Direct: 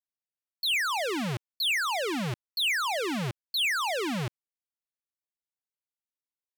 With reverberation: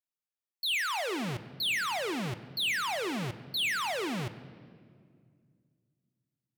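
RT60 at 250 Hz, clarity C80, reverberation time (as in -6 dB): 2.9 s, 14.5 dB, 2.1 s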